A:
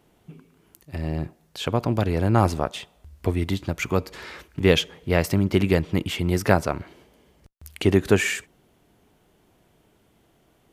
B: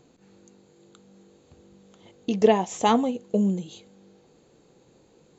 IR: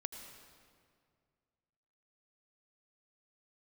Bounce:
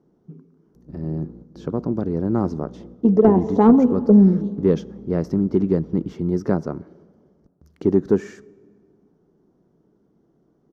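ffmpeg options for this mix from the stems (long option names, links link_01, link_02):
-filter_complex "[0:a]volume=-9.5dB,asplit=3[link_01][link_02][link_03];[link_02]volume=-18dB[link_04];[1:a]lowpass=2800,aeval=exprs='val(0)+0.00447*(sin(2*PI*60*n/s)+sin(2*PI*2*60*n/s)/2+sin(2*PI*3*60*n/s)/3+sin(2*PI*4*60*n/s)/4+sin(2*PI*5*60*n/s)/5)':channel_layout=same,adelay=750,volume=-2.5dB,asplit=2[link_05][link_06];[link_06]volume=-5.5dB[link_07];[link_03]apad=whole_len=270365[link_08];[link_05][link_08]sidechaingate=range=-33dB:threshold=-57dB:ratio=16:detection=peak[link_09];[2:a]atrim=start_sample=2205[link_10];[link_04][link_07]amix=inputs=2:normalize=0[link_11];[link_11][link_10]afir=irnorm=-1:irlink=0[link_12];[link_01][link_09][link_12]amix=inputs=3:normalize=0,firequalizer=gain_entry='entry(110,0);entry(150,12);entry(400,11);entry(640,1);entry(1300,0);entry(2500,-18);entry(5700,-3);entry(8300,-21)':delay=0.05:min_phase=1,asoftclip=type=tanh:threshold=-1.5dB"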